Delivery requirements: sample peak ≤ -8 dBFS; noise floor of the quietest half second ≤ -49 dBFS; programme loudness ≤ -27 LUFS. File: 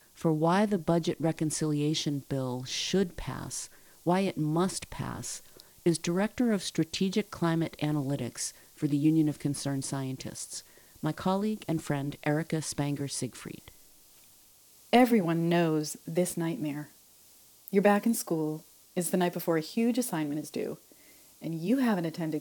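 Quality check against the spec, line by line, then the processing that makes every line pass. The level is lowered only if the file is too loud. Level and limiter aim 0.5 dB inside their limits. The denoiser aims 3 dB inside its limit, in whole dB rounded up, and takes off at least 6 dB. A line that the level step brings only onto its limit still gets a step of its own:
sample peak -10.5 dBFS: pass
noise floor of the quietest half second -58 dBFS: pass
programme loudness -30.0 LUFS: pass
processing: none needed

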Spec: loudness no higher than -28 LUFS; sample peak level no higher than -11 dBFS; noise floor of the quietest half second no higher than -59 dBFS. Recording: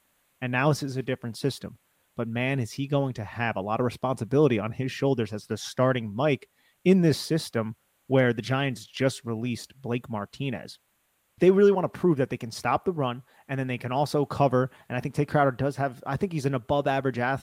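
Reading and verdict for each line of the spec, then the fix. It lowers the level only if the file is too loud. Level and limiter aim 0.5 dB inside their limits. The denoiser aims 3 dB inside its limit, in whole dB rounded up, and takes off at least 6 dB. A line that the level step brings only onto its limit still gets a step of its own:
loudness -26.5 LUFS: fail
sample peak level -9.0 dBFS: fail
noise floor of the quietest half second -71 dBFS: pass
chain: trim -2 dB; peak limiter -11.5 dBFS

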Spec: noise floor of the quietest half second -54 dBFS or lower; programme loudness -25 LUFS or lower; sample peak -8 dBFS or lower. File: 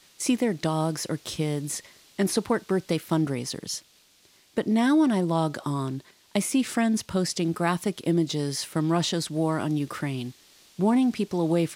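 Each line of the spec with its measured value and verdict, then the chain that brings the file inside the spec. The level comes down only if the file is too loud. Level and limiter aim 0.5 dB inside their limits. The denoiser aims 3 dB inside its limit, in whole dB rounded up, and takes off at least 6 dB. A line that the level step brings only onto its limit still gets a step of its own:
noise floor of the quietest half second -60 dBFS: pass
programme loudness -26.5 LUFS: pass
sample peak -9.0 dBFS: pass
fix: none needed

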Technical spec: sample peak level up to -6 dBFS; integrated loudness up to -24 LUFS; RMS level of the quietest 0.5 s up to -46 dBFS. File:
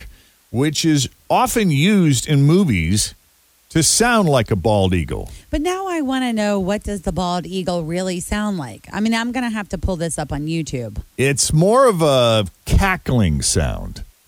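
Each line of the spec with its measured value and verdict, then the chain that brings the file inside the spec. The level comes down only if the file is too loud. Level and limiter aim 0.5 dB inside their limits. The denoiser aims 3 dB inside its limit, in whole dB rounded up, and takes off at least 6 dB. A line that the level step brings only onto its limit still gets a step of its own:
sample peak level -4.0 dBFS: fail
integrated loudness -18.0 LUFS: fail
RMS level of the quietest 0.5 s -56 dBFS: pass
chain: trim -6.5 dB

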